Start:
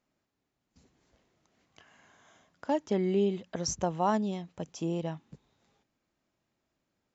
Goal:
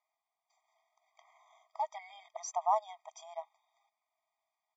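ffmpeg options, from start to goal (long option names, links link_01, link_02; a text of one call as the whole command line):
ffmpeg -i in.wav -af "highshelf=frequency=3100:gain=-9,atempo=1.5,afftfilt=real='re*eq(mod(floor(b*sr/1024/630),2),1)':imag='im*eq(mod(floor(b*sr/1024/630),2),1)':win_size=1024:overlap=0.75,volume=2dB" out.wav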